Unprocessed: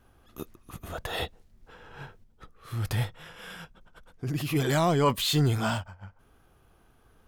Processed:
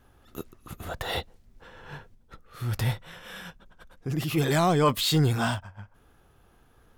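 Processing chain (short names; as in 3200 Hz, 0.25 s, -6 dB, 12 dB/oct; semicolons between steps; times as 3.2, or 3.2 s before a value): speed mistake 24 fps film run at 25 fps; gain +1.5 dB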